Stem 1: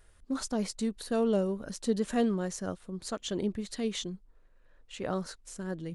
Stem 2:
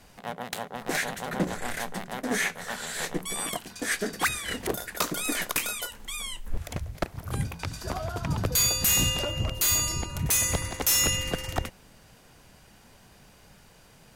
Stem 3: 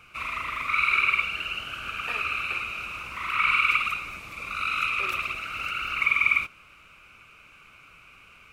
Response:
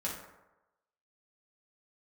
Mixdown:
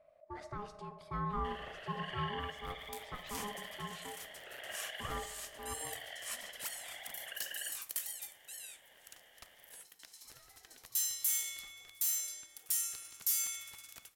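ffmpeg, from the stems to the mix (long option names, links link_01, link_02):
-filter_complex "[0:a]firequalizer=gain_entry='entry(140,0);entry(210,-13);entry(480,-2);entry(6900,-22)':delay=0.05:min_phase=1,volume=-4.5dB,asplit=2[link_01][link_02];[link_02]volume=-8.5dB[link_03];[1:a]aderivative,adelay=2400,volume=-9dB,asplit=2[link_04][link_05];[link_05]volume=-12.5dB[link_06];[2:a]acompressor=threshold=-42dB:ratio=2,adelay=1300,volume=-8dB[link_07];[3:a]atrim=start_sample=2205[link_08];[link_03][link_06]amix=inputs=2:normalize=0[link_09];[link_09][link_08]afir=irnorm=-1:irlink=0[link_10];[link_01][link_04][link_07][link_10]amix=inputs=4:normalize=0,aeval=exprs='val(0)*sin(2*PI*620*n/s)':channel_layout=same"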